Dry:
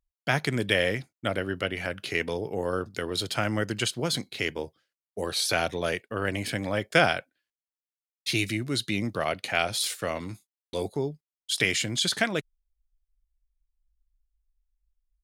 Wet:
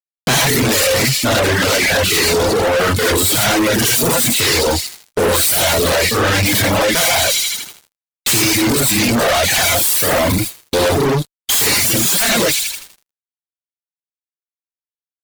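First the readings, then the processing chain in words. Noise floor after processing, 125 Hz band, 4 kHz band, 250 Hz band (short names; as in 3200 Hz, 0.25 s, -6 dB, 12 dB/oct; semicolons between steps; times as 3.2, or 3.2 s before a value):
under -85 dBFS, +13.0 dB, +14.5 dB, +13.5 dB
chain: self-modulated delay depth 0.5 ms; in parallel at 0 dB: compressor 5:1, threshold -37 dBFS, peak gain reduction 17.5 dB; on the sum: high shelf 9500 Hz +6 dB; on a send: thin delay 81 ms, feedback 70%, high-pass 3300 Hz, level -8 dB; on the sum: non-linear reverb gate 0.13 s rising, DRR -7.5 dB; fuzz box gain 35 dB, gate -39 dBFS; reverb removal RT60 1 s; sample leveller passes 1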